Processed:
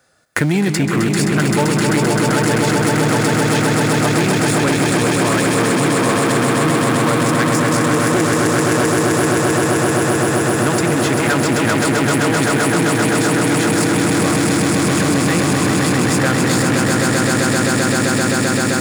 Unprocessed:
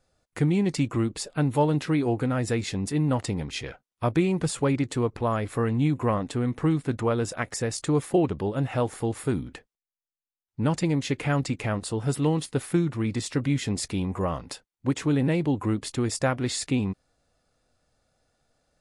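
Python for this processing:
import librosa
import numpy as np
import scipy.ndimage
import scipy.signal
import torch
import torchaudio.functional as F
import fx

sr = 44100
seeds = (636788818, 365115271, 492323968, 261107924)

y = fx.peak_eq(x, sr, hz=1600.0, db=10.0, octaves=0.75)
y = fx.echo_swell(y, sr, ms=130, loudest=8, wet_db=-4.5)
y = fx.leveller(y, sr, passes=3)
y = scipy.signal.sosfilt(scipy.signal.butter(2, 120.0, 'highpass', fs=sr, output='sos'), y)
y = fx.high_shelf(y, sr, hz=7400.0, db=9.0)
y = fx.band_squash(y, sr, depth_pct=70)
y = y * librosa.db_to_amplitude(-4.5)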